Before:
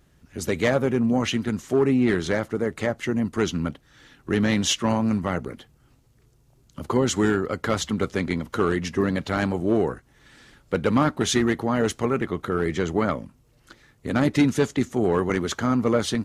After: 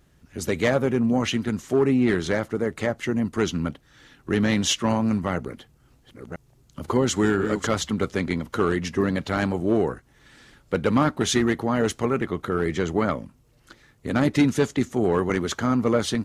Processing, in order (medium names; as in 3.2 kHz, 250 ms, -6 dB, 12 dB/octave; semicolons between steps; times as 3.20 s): 5.34–7.67 s: chunks repeated in reverse 510 ms, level -7 dB